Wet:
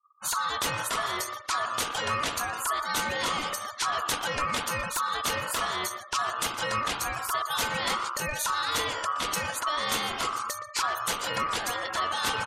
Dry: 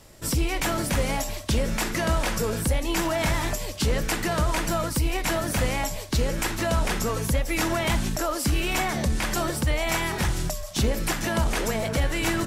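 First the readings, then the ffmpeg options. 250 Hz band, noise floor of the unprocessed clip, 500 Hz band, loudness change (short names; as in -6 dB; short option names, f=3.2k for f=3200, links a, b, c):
-14.5 dB, -35 dBFS, -8.0 dB, -3.0 dB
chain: -filter_complex "[0:a]afftfilt=real='re*gte(hypot(re,im),0.0224)':imag='im*gte(hypot(re,im),0.0224)':win_size=1024:overlap=0.75,bandreject=f=50:t=h:w=6,bandreject=f=100:t=h:w=6,bandreject=f=150:t=h:w=6,bandreject=f=200:t=h:w=6,acrossover=split=1700[a][b];[b]acontrast=76[c];[a][c]amix=inputs=2:normalize=0,aeval=exprs='val(0)*sin(2*PI*1200*n/s)':c=same,asplit=2[d][e];[e]adelay=120,highpass=300,lowpass=3.4k,asoftclip=type=hard:threshold=-17dB,volume=-11dB[f];[d][f]amix=inputs=2:normalize=0,volume=-3.5dB"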